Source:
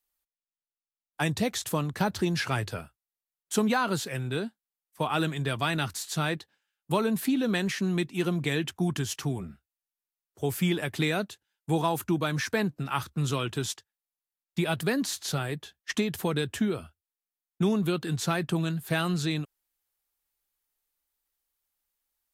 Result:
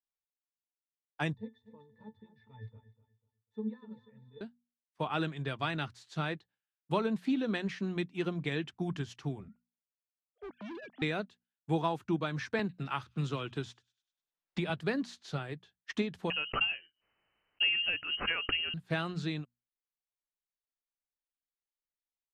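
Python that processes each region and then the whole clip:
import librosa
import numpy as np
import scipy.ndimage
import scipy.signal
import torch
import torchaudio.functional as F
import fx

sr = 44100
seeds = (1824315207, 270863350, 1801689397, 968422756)

y = fx.chain(x, sr, fx.octave_resonator(note='A', decay_s=0.18),
    fx.echo_feedback(ms=247, feedback_pct=29, wet_db=-10.5), at=(1.35, 4.41))
y = fx.chain(y, sr, fx.sine_speech(),
    fx.clip_hard(threshold_db=-32.5), at=(9.48, 11.02))
y = fx.chain(y, sr, fx.echo_wet_highpass(ms=99, feedback_pct=42, hz=2400.0, wet_db=-21.0),
    fx.band_squash(depth_pct=70), at=(12.59, 14.7))
y = fx.chain(y, sr, fx.freq_invert(carrier_hz=3000),
    fx.pre_swell(db_per_s=70.0), at=(16.3, 18.74))
y = scipy.signal.sosfilt(scipy.signal.butter(2, 4200.0, 'lowpass', fs=sr, output='sos'), y)
y = fx.hum_notches(y, sr, base_hz=60, count=4)
y = fx.upward_expand(y, sr, threshold_db=-48.0, expansion=1.5)
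y = y * librosa.db_to_amplitude(-3.5)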